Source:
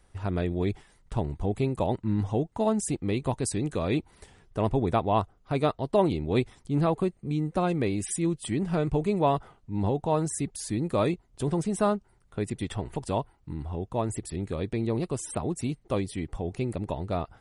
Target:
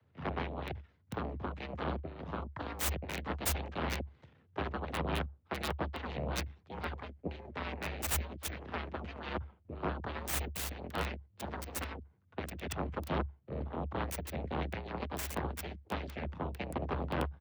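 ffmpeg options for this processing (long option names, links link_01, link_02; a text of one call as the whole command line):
ffmpeg -i in.wav -filter_complex "[0:a]afftfilt=real='re*lt(hypot(re,im),0.178)':imag='im*lt(hypot(re,im),0.178)':win_size=1024:overlap=0.75,equalizer=frequency=1100:width=0.71:gain=-3.5,acrossover=split=160[link_01][link_02];[link_01]acompressor=threshold=-38dB:ratio=6[link_03];[link_03][link_02]amix=inputs=2:normalize=0,asplit=2[link_04][link_05];[link_05]asetrate=33038,aresample=44100,atempo=1.33484,volume=-3dB[link_06];[link_04][link_06]amix=inputs=2:normalize=0,aeval=exprs='0.141*(cos(1*acos(clip(val(0)/0.141,-1,1)))-cos(1*PI/2))+0.0178*(cos(3*acos(clip(val(0)/0.141,-1,1)))-cos(3*PI/2))+0.0708*(cos(6*acos(clip(val(0)/0.141,-1,1)))-cos(6*PI/2))':channel_layout=same,acrossover=split=180|3700[link_07][link_08][link_09];[link_09]acrusher=bits=4:mix=0:aa=0.000001[link_10];[link_07][link_08][link_10]amix=inputs=3:normalize=0,afreqshift=69,volume=-5.5dB" out.wav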